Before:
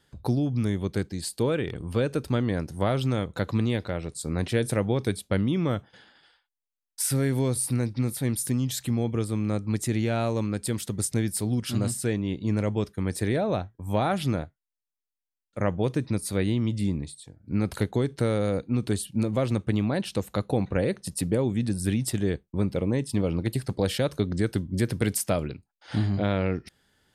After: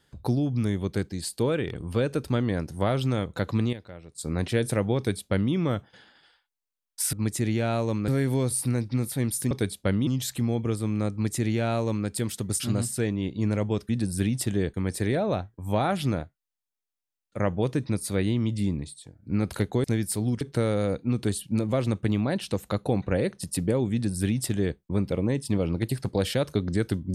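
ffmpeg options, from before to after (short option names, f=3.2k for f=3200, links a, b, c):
-filter_complex "[0:a]asplit=12[a][b][c][d][e][f][g][h][i][j][k][l];[a]atrim=end=3.73,asetpts=PTS-STARTPTS,afade=t=out:st=3.61:d=0.12:c=log:silence=0.237137[m];[b]atrim=start=3.73:end=4.18,asetpts=PTS-STARTPTS,volume=-12.5dB[n];[c]atrim=start=4.18:end=7.132,asetpts=PTS-STARTPTS,afade=t=in:d=0.12:c=log:silence=0.237137[o];[d]atrim=start=9.608:end=10.562[p];[e]atrim=start=7.128:end=8.562[q];[f]atrim=start=4.968:end=5.532[r];[g]atrim=start=8.558:end=11.092[s];[h]atrim=start=11.658:end=12.952[t];[i]atrim=start=21.558:end=22.412[u];[j]atrim=start=12.948:end=18.052[v];[k]atrim=start=11.088:end=11.662[w];[l]atrim=start=18.048[x];[m][n][o]concat=n=3:v=0:a=1[y];[y][p]acrossfade=d=0.004:c1=hsin:c2=hsin[z];[z][q]acrossfade=d=0.004:c1=hsin:c2=hsin[aa];[aa][r]acrossfade=d=0.004:c1=hsin:c2=hsin[ab];[ab][s]acrossfade=d=0.004:c1=hsin:c2=hsin[ac];[ac][t]acrossfade=d=0.004:c1=hsin:c2=hsin[ad];[ad][u]acrossfade=d=0.004:c1=hsin:c2=hsin[ae];[ae][v]acrossfade=d=0.004:c1=hsin:c2=hsin[af];[af][w]acrossfade=d=0.004:c1=hsin:c2=hsin[ag];[ag][x]acrossfade=d=0.004:c1=hsin:c2=hsin"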